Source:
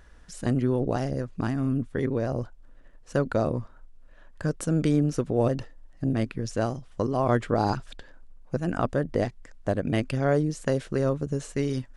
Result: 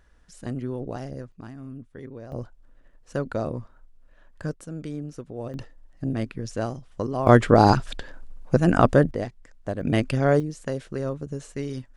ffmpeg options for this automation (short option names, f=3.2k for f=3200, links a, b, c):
-af "asetnsamples=n=441:p=0,asendcmd='1.32 volume volume -13dB;2.32 volume volume -3dB;4.54 volume volume -11dB;5.54 volume volume -1.5dB;7.27 volume volume 9dB;9.11 volume volume -3.5dB;9.81 volume volume 3.5dB;10.4 volume volume -4dB',volume=-6.5dB"